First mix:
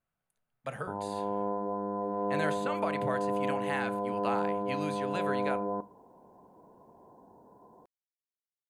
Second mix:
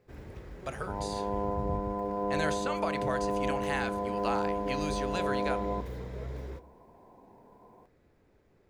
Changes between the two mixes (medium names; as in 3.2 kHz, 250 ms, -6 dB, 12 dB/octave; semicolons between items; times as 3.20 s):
speech: add peaking EQ 5.6 kHz +14 dB 0.72 oct; first sound: unmuted